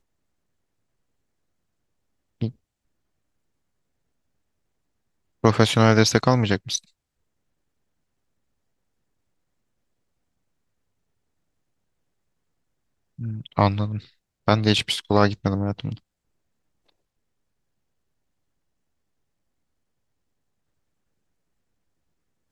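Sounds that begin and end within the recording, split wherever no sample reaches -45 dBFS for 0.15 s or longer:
2.41–2.52
5.43–6.84
13.18–14.07
14.48–15.98

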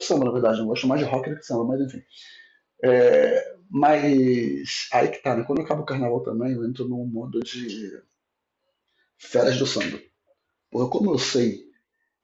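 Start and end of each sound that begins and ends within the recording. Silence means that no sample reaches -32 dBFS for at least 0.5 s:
2.83–7.95
9.23–9.97
10.73–11.56

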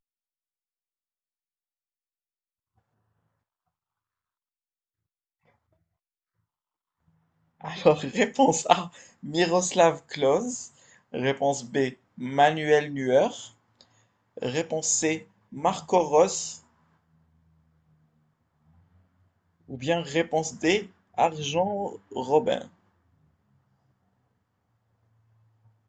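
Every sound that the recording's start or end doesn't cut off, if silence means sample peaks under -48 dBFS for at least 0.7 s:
7.61–16.61
19.69–22.68

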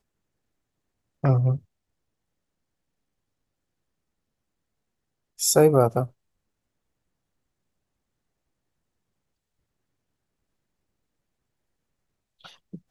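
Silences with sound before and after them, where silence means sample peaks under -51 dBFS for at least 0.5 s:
1.62–5.38
6.11–12.41

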